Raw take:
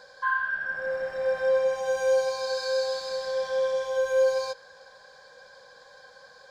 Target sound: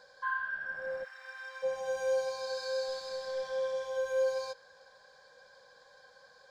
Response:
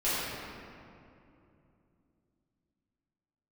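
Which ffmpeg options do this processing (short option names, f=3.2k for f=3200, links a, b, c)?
-filter_complex "[0:a]asplit=3[a][b][c];[a]afade=t=out:st=1.03:d=0.02[d];[b]highpass=f=1.1k:w=0.5412,highpass=f=1.1k:w=1.3066,afade=t=in:st=1.03:d=0.02,afade=t=out:st=1.62:d=0.02[e];[c]afade=t=in:st=1.62:d=0.02[f];[d][e][f]amix=inputs=3:normalize=0,asettb=1/sr,asplit=3[g][h][i];[g]atrim=end=2.884[j];[h]atrim=start=2.88:end=3.52,asetpts=PTS-STARTPTS,afade=t=in:d=0.004:c=qsin,afade=t=out:st=0.636:d=0.004:c=qsin,aeval=exprs='0.106*(cos(1*acos(clip(val(0)/0.106,-1,1)))-cos(1*PI/2))+0.0075*(cos(2*acos(clip(val(0)/0.106,-1,1)))-cos(2*PI/2))':c=same[k];[i]atrim=start=3.516[l];[j][k]acrossfade=d=0.004:c1=hsin:c2=qsin[m];[m][l]acrossfade=d=0.004:c1=qsin:c2=hsin,volume=-7.5dB"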